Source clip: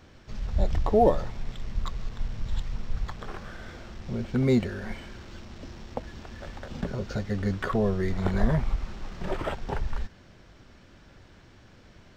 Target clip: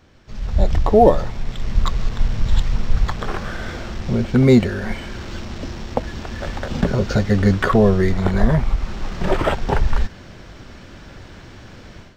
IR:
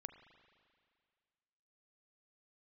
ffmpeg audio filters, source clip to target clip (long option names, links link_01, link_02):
-af "dynaudnorm=framelen=250:gausssize=3:maxgain=13.5dB"